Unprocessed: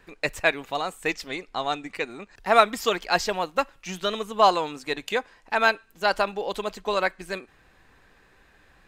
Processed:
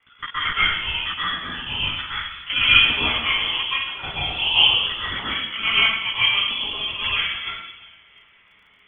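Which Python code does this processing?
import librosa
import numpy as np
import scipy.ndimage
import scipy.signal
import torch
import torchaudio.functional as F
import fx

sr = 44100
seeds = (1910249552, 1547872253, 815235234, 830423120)

p1 = fx.local_reverse(x, sr, ms=32.0)
p2 = scipy.signal.sosfilt(scipy.signal.butter(4, 390.0, 'highpass', fs=sr, output='sos'), p1)
p3 = p2 + fx.echo_feedback(p2, sr, ms=345, feedback_pct=47, wet_db=-22.5, dry=0)
p4 = fx.chorus_voices(p3, sr, voices=2, hz=0.28, base_ms=16, depth_ms=3.7, mix_pct=50)
p5 = fx.high_shelf(p4, sr, hz=2800.0, db=6.5)
p6 = fx.rev_plate(p5, sr, seeds[0], rt60_s=1.0, hf_ratio=0.75, predelay_ms=110, drr_db=-9.0)
p7 = fx.freq_invert(p6, sr, carrier_hz=3800)
p8 = fx.dmg_crackle(p7, sr, seeds[1], per_s=14.0, level_db=-52.0)
y = F.gain(torch.from_numpy(p8), -3.0).numpy()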